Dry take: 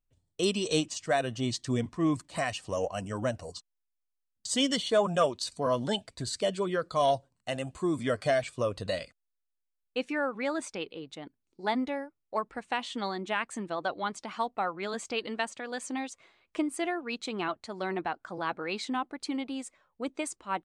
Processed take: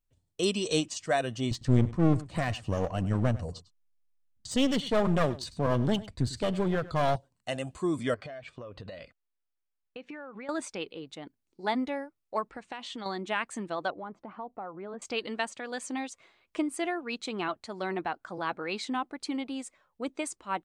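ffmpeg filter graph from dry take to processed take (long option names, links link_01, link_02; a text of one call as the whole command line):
ffmpeg -i in.wav -filter_complex "[0:a]asettb=1/sr,asplit=3[link_01][link_02][link_03];[link_01]atrim=end=1.514[link_04];[link_02]atrim=start=1.51:end=7.16,asetpts=PTS-STARTPTS,afade=type=in:duration=0.004:curve=qsin,afade=type=out:start_time=5.646:duration=0.004:curve=qsin,bass=frequency=250:gain=13,treble=frequency=4000:gain=-7,aeval=exprs='clip(val(0),-1,0.0266)':channel_layout=same,aecho=1:1:101:0.126,atrim=end_sample=249165[link_05];[link_03]atrim=start=7.156[link_06];[link_04][link_05]acrossfade=duration=0.004:curve1=hsin:curve2=qsin[link_07];[link_07][link_06]acrossfade=duration=0.004:curve1=qsin:curve2=hsin,asettb=1/sr,asplit=3[link_08][link_09][link_10];[link_08]atrim=end=8.144[link_11];[link_09]atrim=start=8.14:end=10.49,asetpts=PTS-STARTPTS,afade=type=in:duration=0.004:curve=qsin,afade=type=out:start_time=2.346:duration=0.004:curve=qsin,lowpass=3100,acompressor=threshold=-38dB:ratio=16:attack=3.2:release=140:knee=1:detection=peak[link_12];[link_10]atrim=start=10.486[link_13];[link_11][link_12]acrossfade=duration=0.004:curve1=hsin:curve2=qsin[link_14];[link_14][link_13]acrossfade=duration=0.004:curve1=qsin:curve2=hsin,asettb=1/sr,asplit=3[link_15][link_16][link_17];[link_15]atrim=end=12.494[link_18];[link_16]atrim=start=12.49:end=13.06,asetpts=PTS-STARTPTS,afade=type=in:duration=0.004:curve=qsin,afade=type=out:start_time=0.566:duration=0.004:curve=qsin,lowpass=7900,acompressor=threshold=-36dB:ratio=4:attack=3.2:release=140:knee=1:detection=peak[link_19];[link_17]atrim=start=13.056[link_20];[link_18][link_19]acrossfade=duration=0.004:curve1=hsin:curve2=qsin[link_21];[link_21][link_20]acrossfade=duration=0.004:curve1=qsin:curve2=hsin,asettb=1/sr,asplit=3[link_22][link_23][link_24];[link_22]atrim=end=13.904[link_25];[link_23]atrim=start=13.9:end=15.02,asetpts=PTS-STARTPTS,afade=type=in:duration=0.004:curve=qsin,afade=type=out:start_time=1.116:duration=0.004:curve=qsin,lowpass=1000,acompressor=threshold=-38dB:ratio=2.5:attack=3.2:release=140:knee=1:detection=peak[link_26];[link_24]atrim=start=15.016[link_27];[link_25][link_26]acrossfade=duration=0.004:curve1=hsin:curve2=qsin[link_28];[link_28][link_27]acrossfade=duration=0.004:curve1=qsin:curve2=hsin" out.wav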